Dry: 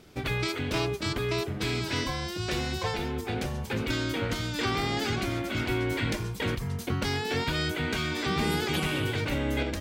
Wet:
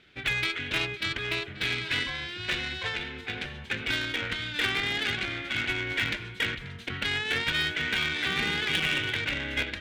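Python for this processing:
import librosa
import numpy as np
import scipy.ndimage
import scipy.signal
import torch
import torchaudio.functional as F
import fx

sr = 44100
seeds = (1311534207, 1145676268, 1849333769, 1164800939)

y = fx.band_shelf(x, sr, hz=2400.0, db=14.5, octaves=1.7)
y = y + 10.0 ** (-15.0 / 20.0) * np.pad(y, (int(535 * sr / 1000.0), 0))[:len(y)]
y = fx.cheby_harmonics(y, sr, harmonics=(2, 3, 6, 8), levels_db=(-26, -12, -29, -33), full_scale_db=-5.0)
y = fx.air_absorb(y, sr, metres=55.0)
y = np.clip(10.0 ** (18.5 / 20.0) * y, -1.0, 1.0) / 10.0 ** (18.5 / 20.0)
y = y * librosa.db_to_amplitude(2.0)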